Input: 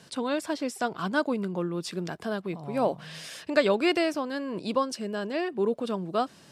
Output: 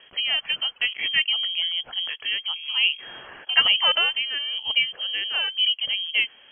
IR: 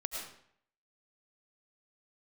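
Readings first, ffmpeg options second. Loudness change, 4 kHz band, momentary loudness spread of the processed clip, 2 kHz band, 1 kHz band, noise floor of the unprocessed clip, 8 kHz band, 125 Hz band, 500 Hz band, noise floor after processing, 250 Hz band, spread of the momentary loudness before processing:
+7.5 dB, +20.0 dB, 9 LU, +10.0 dB, -5.0 dB, -54 dBFS, under -35 dB, under -15 dB, -16.0 dB, -52 dBFS, under -25 dB, 9 LU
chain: -af "lowpass=f=2900:t=q:w=0.5098,lowpass=f=2900:t=q:w=0.6013,lowpass=f=2900:t=q:w=0.9,lowpass=f=2900:t=q:w=2.563,afreqshift=-3400,volume=1.58"

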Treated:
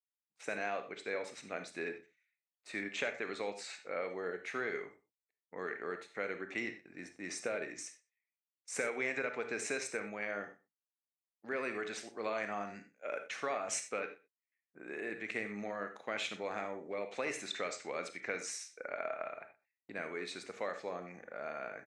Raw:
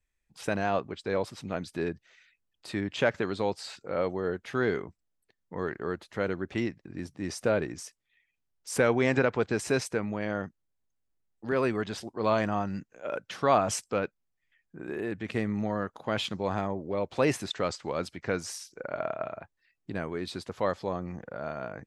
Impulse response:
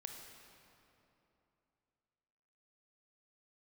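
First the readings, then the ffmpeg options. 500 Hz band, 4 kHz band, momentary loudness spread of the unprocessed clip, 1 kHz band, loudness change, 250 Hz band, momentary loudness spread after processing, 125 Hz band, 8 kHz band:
-10.0 dB, -7.0 dB, 12 LU, -10.0 dB, -9.0 dB, -14.0 dB, 10 LU, -21.5 dB, -3.0 dB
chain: -filter_complex "[0:a]agate=range=0.112:threshold=0.00447:ratio=16:detection=peak,highpass=340,equalizer=f=350:t=q:w=4:g=-3,equalizer=f=950:t=q:w=4:g=-6,equalizer=f=2200:t=q:w=4:g=7,equalizer=f=3200:t=q:w=4:g=-9,equalizer=f=4800:t=q:w=4:g=-10,lowpass=f=8400:w=0.5412,lowpass=f=8400:w=1.3066,acompressor=threshold=0.0355:ratio=6,asplit=2[s0][s1];[s1]adelay=122.4,volume=0.0794,highshelf=f=4000:g=-2.76[s2];[s0][s2]amix=inputs=2:normalize=0[s3];[1:a]atrim=start_sample=2205,atrim=end_sample=4410[s4];[s3][s4]afir=irnorm=-1:irlink=0,dynaudnorm=f=120:g=5:m=1.58,adynamicequalizer=threshold=0.00282:dfrequency=1700:dqfactor=0.7:tfrequency=1700:tqfactor=0.7:attack=5:release=100:ratio=0.375:range=3:mode=boostabove:tftype=highshelf,volume=0.631"

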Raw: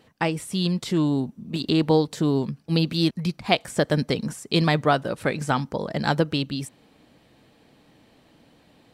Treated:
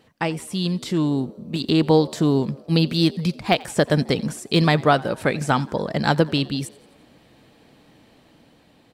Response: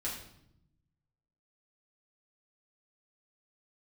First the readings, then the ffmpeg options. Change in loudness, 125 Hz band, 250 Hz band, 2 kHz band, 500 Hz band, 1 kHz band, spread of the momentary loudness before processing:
+3.0 dB, +3.0 dB, +2.5 dB, +2.5 dB, +3.0 dB, +3.0 dB, 8 LU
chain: -filter_complex "[0:a]deesser=0.5,asplit=5[s0][s1][s2][s3][s4];[s1]adelay=87,afreqshift=73,volume=0.0708[s5];[s2]adelay=174,afreqshift=146,volume=0.0403[s6];[s3]adelay=261,afreqshift=219,volume=0.0229[s7];[s4]adelay=348,afreqshift=292,volume=0.0132[s8];[s0][s5][s6][s7][s8]amix=inputs=5:normalize=0,dynaudnorm=f=320:g=9:m=1.58"

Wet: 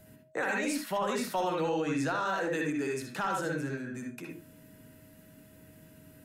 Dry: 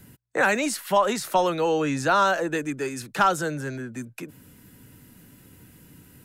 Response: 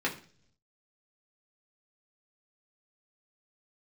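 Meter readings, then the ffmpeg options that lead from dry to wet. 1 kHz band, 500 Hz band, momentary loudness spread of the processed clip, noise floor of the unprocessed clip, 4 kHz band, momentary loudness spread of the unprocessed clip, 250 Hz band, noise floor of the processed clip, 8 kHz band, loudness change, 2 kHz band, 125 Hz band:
-10.0 dB, -8.0 dB, 10 LU, -53 dBFS, -9.0 dB, 15 LU, -4.5 dB, -57 dBFS, -8.5 dB, -8.0 dB, -8.0 dB, -5.5 dB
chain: -filter_complex "[0:a]aeval=exprs='val(0)+0.00251*sin(2*PI*630*n/s)':c=same,asplit=2[s0][s1];[1:a]atrim=start_sample=2205,afade=t=out:st=0.16:d=0.01,atrim=end_sample=7497,adelay=60[s2];[s1][s2]afir=irnorm=-1:irlink=0,volume=0.398[s3];[s0][s3]amix=inputs=2:normalize=0,alimiter=limit=0.178:level=0:latency=1:release=42,volume=0.422"

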